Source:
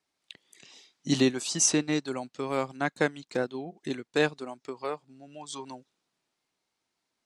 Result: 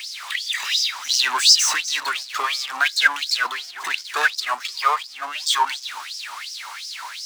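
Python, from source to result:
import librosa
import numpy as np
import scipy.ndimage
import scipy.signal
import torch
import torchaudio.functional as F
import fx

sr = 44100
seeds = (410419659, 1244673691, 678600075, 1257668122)

p1 = fx.power_curve(x, sr, exponent=0.35)
p2 = fx.high_shelf(p1, sr, hz=9100.0, db=-3.5)
p3 = fx.notch(p2, sr, hz=500.0, q=12.0)
p4 = p3 + fx.echo_single(p3, sr, ms=249, db=-18.5, dry=0)
p5 = fx.filter_lfo_highpass(p4, sr, shape='sine', hz=2.8, low_hz=960.0, high_hz=5300.0, q=7.8)
y = p5 * librosa.db_to_amplitude(-3.5)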